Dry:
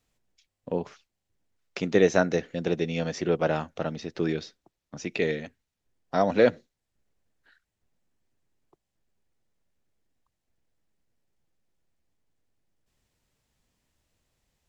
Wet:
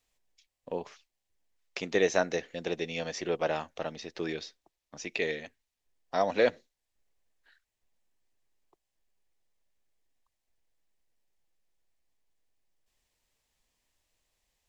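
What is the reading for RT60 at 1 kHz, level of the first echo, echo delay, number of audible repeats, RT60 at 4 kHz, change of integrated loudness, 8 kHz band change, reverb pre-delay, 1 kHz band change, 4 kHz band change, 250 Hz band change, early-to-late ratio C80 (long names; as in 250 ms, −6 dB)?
no reverb audible, no echo audible, no echo audible, no echo audible, no reverb audible, −5.0 dB, can't be measured, no reverb audible, −3.0 dB, 0.0 dB, −9.0 dB, no reverb audible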